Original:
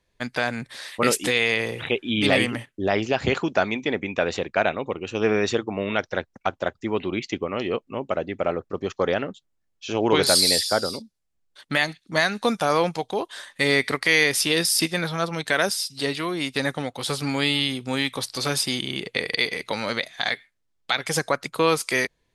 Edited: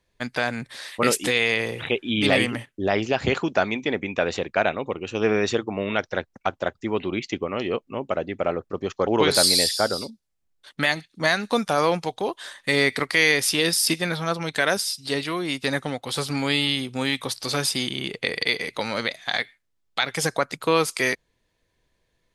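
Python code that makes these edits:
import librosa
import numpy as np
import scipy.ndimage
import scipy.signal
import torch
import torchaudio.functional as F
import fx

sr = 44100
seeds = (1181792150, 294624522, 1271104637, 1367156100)

y = fx.edit(x, sr, fx.cut(start_s=9.07, length_s=0.92), tone=tone)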